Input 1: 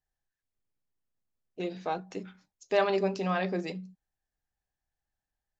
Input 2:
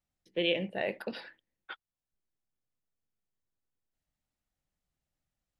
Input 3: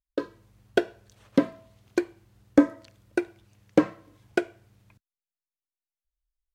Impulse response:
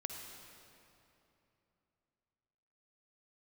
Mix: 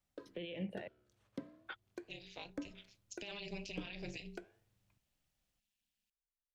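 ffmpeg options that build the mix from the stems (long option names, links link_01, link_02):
-filter_complex "[0:a]highshelf=frequency=1900:width_type=q:width=3:gain=12.5,tremolo=f=210:d=0.974,adelay=500,volume=-5dB[link_01];[1:a]volume=2dB,asplit=3[link_02][link_03][link_04];[link_02]atrim=end=0.88,asetpts=PTS-STARTPTS,afade=type=out:start_time=0.876:duration=0.004:curve=hsin[link_05];[link_03]atrim=start=0.88:end=1.67,asetpts=PTS-STARTPTS,volume=0[link_06];[link_04]atrim=start=1.67,asetpts=PTS-STARTPTS,afade=type=in:duration=0.004:curve=hsin[link_07];[link_05][link_06][link_07]concat=n=3:v=0:a=1,asplit=2[link_08][link_09];[2:a]flanger=delay=8:depth=7.7:regen=-85:speed=0.4:shape=sinusoidal,volume=-14.5dB[link_10];[link_09]apad=whole_len=268927[link_11];[link_01][link_11]sidechaincompress=threshold=-48dB:ratio=5:attack=16:release=1320[link_12];[link_12][link_08]amix=inputs=2:normalize=0,alimiter=level_in=4dB:limit=-24dB:level=0:latency=1:release=53,volume=-4dB,volume=0dB[link_13];[link_10][link_13]amix=inputs=2:normalize=0,acrossover=split=200[link_14][link_15];[link_15]acompressor=threshold=-45dB:ratio=4[link_16];[link_14][link_16]amix=inputs=2:normalize=0"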